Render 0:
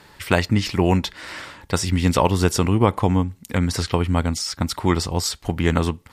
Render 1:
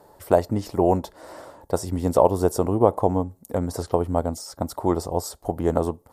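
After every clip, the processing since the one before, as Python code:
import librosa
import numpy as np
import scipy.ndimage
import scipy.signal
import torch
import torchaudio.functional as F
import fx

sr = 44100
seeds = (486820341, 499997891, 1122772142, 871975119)

y = fx.curve_eq(x, sr, hz=(190.0, 650.0, 2400.0, 12000.0), db=(0, 14, -16, 6))
y = y * librosa.db_to_amplitude(-7.5)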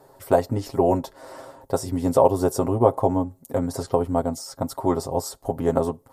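y = x + 0.65 * np.pad(x, (int(7.5 * sr / 1000.0), 0))[:len(x)]
y = y * librosa.db_to_amplitude(-1.0)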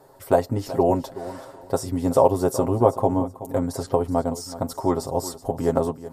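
y = fx.echo_feedback(x, sr, ms=375, feedback_pct=23, wet_db=-15)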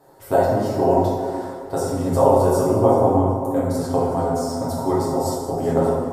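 y = fx.rev_plate(x, sr, seeds[0], rt60_s=1.8, hf_ratio=0.5, predelay_ms=0, drr_db=-6.5)
y = y * librosa.db_to_amplitude(-4.0)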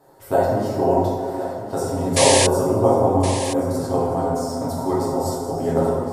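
y = fx.spec_paint(x, sr, seeds[1], shape='noise', start_s=2.16, length_s=0.31, low_hz=1600.0, high_hz=11000.0, level_db=-18.0)
y = y + 10.0 ** (-12.0 / 20.0) * np.pad(y, (int(1068 * sr / 1000.0), 0))[:len(y)]
y = y * librosa.db_to_amplitude(-1.0)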